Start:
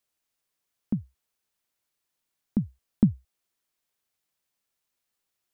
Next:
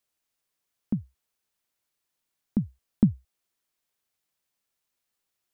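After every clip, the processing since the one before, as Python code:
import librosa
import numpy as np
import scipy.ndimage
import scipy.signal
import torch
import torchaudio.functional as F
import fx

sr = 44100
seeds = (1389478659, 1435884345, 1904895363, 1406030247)

y = x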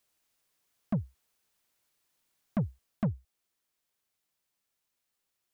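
y = fx.rider(x, sr, range_db=4, speed_s=0.5)
y = 10.0 ** (-26.5 / 20.0) * np.tanh(y / 10.0 ** (-26.5 / 20.0))
y = y * librosa.db_to_amplitude(2.5)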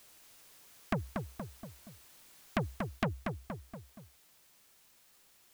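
y = fx.echo_feedback(x, sr, ms=236, feedback_pct=33, wet_db=-9.5)
y = fx.spectral_comp(y, sr, ratio=2.0)
y = y * librosa.db_to_amplitude(6.5)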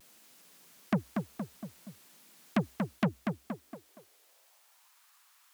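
y = fx.filter_sweep_highpass(x, sr, from_hz=190.0, to_hz=1100.0, start_s=3.38, end_s=5.0, q=2.4)
y = fx.vibrato(y, sr, rate_hz=0.92, depth_cents=48.0)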